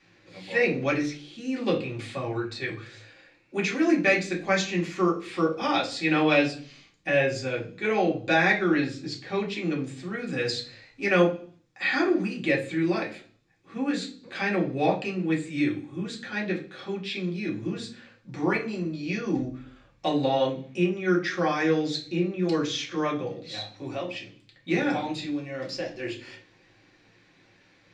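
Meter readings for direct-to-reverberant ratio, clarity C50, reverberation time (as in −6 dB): −3.5 dB, 10.5 dB, 0.50 s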